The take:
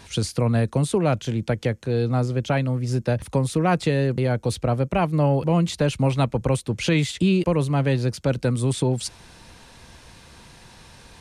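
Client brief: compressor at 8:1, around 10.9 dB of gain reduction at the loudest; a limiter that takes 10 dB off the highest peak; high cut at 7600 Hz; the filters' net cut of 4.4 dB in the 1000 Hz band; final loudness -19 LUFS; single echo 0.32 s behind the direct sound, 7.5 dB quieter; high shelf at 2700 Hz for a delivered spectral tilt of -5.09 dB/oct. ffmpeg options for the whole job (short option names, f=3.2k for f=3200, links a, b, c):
-af "lowpass=7.6k,equalizer=f=1k:t=o:g=-7.5,highshelf=f=2.7k:g=6.5,acompressor=threshold=-28dB:ratio=8,alimiter=level_in=2.5dB:limit=-24dB:level=0:latency=1,volume=-2.5dB,aecho=1:1:320:0.422,volume=16.5dB"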